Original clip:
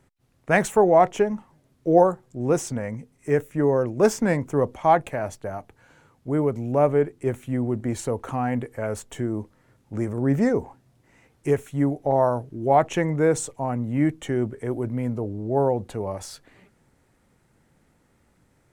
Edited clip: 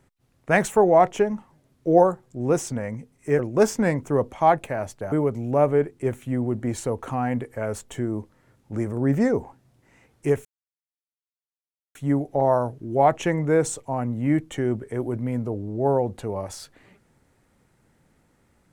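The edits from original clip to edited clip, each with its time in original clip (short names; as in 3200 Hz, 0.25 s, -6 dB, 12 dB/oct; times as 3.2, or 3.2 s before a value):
3.39–3.82 cut
5.55–6.33 cut
11.66 insert silence 1.50 s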